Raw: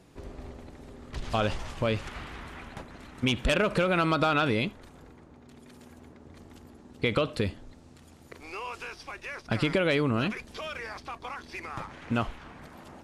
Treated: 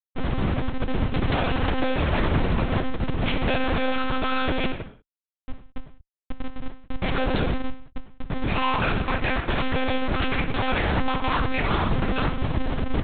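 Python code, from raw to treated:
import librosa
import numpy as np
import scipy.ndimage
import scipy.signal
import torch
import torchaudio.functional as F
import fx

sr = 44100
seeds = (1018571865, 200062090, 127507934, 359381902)

y = fx.schmitt(x, sr, flips_db=-41.0)
y = fx.rev_gated(y, sr, seeds[0], gate_ms=220, shape='falling', drr_db=5.0)
y = fx.lpc_monotone(y, sr, seeds[1], pitch_hz=260.0, order=8)
y = y * 10.0 ** (8.5 / 20.0)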